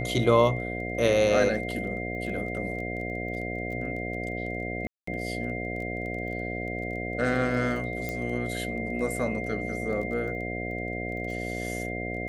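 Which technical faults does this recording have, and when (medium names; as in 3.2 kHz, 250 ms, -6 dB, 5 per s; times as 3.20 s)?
buzz 60 Hz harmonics 12 -34 dBFS
crackle 15 per s -37 dBFS
whine 2.1 kHz -35 dBFS
4.87–5.07 s: dropout 204 ms
8.09 s: pop -18 dBFS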